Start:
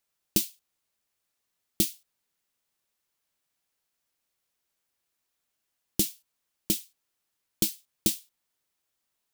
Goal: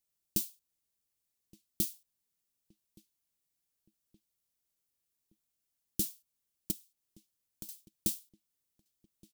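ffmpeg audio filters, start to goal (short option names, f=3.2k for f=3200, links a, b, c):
-filter_complex "[0:a]equalizer=f=1.3k:w=0.33:g=-11,asplit=2[a][b];[b]alimiter=limit=-19.5dB:level=0:latency=1:release=327,volume=1dB[c];[a][c]amix=inputs=2:normalize=0,asettb=1/sr,asplit=3[d][e][f];[d]atrim=end=6.714[g];[e]atrim=start=6.71:end=7.69,asetpts=PTS-STARTPTS,afade=t=in:d=0.004:c=qsin,afade=t=out:st=0.976:d=0.004:c=qsin,acompressor=threshold=-39dB:ratio=4[h];[f]atrim=start=7.686[i];[g][h]acrossfade=d=0.004:c1=hsin:c2=qsin[j];[j][i]acrossfade=d=0.004:c1=qsin:c2=hsin,asplit=2[k][l];[l]adelay=1171,lowpass=f=2.3k:p=1,volume=-23dB,asplit=2[m][n];[n]adelay=1171,lowpass=f=2.3k:p=1,volume=0.52,asplit=2[o][p];[p]adelay=1171,lowpass=f=2.3k:p=1,volume=0.52[q];[k][m][o][q]amix=inputs=4:normalize=0,volume=-8dB"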